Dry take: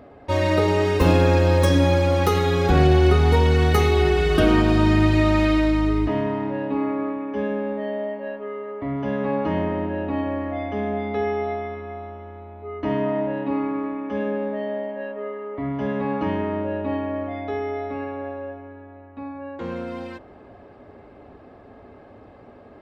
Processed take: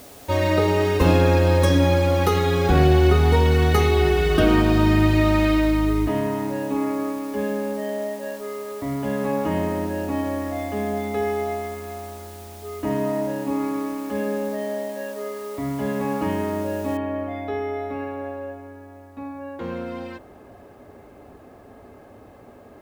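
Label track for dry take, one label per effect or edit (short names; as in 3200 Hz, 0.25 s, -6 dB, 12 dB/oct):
12.270000	13.600000	air absorption 240 m
16.970000	16.970000	noise floor step -47 dB -69 dB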